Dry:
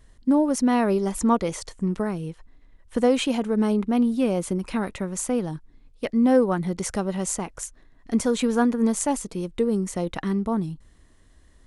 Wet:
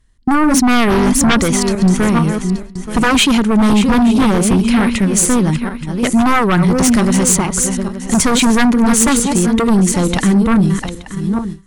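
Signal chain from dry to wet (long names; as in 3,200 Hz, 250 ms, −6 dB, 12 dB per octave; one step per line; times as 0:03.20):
feedback delay that plays each chunk backwards 438 ms, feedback 45%, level −8.5 dB
in parallel at −10 dB: soft clipping −20.5 dBFS, distortion −10 dB
on the sum: noise gate with hold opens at −27 dBFS
sine wavefolder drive 12 dB, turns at −5.5 dBFS
parametric band 560 Hz −8.5 dB 1.3 octaves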